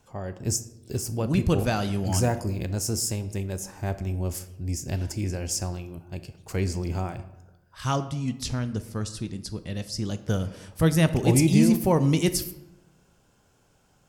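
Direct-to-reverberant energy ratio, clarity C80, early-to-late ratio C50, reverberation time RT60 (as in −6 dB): 11.0 dB, 16.0 dB, 14.0 dB, 0.95 s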